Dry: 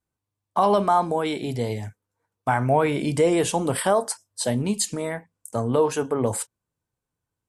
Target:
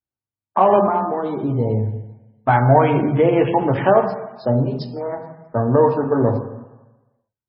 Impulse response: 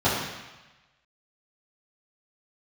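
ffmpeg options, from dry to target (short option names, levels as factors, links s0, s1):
-filter_complex "[0:a]asplit=3[s0][s1][s2];[s0]afade=t=out:st=4.65:d=0.02[s3];[s1]highpass=f=380:w=0.5412,highpass=f=380:w=1.3066,afade=t=in:st=4.65:d=0.02,afade=t=out:st=5.11:d=0.02[s4];[s2]afade=t=in:st=5.11:d=0.02[s5];[s3][s4][s5]amix=inputs=3:normalize=0,afwtdn=0.0251,asettb=1/sr,asplit=3[s6][s7][s8];[s6]atrim=end=0.824[s9];[s7]atrim=start=0.82:end=1.38,asetpts=PTS-STARTPTS,afade=t=in:d=0.004:c=qsin,afade=t=out:st=0.556:d=0.004:c=qsin,acompressor=threshold=0.0501:ratio=2[s10];[s8]atrim=start=1.376[s11];[s9][s10]acrossfade=d=0.004:c1=hsin:c2=qsin[s12];[s12][s11]acrossfade=d=0.004:c1=qsin:c2=hsin,asplit=3[s13][s14][s15];[s13]afade=t=out:st=2.69:d=0.02[s16];[s14]highshelf=f=5200:g=-6.5,afade=t=in:st=2.69:d=0.02,afade=t=out:st=3.24:d=0.02[s17];[s15]afade=t=in:st=3.24:d=0.02[s18];[s16][s17][s18]amix=inputs=3:normalize=0,asplit=2[s19][s20];[1:a]atrim=start_sample=2205,highshelf=f=8800:g=-6[s21];[s20][s21]afir=irnorm=-1:irlink=0,volume=0.106[s22];[s19][s22]amix=inputs=2:normalize=0,volume=1.41" -ar 22050 -c:a libmp3lame -b:a 16k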